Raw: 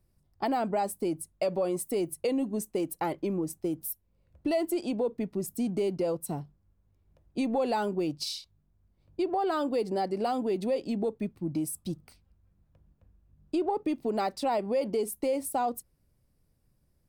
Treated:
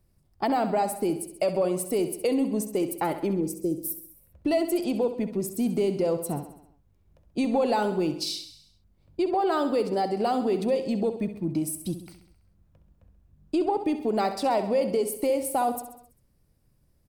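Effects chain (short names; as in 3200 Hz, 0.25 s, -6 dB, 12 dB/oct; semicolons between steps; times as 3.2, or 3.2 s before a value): 3.33–3.88 band shelf 1600 Hz -15 dB 2.4 oct; on a send: feedback echo 66 ms, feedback 57%, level -11 dB; on the sum: gain +3.5 dB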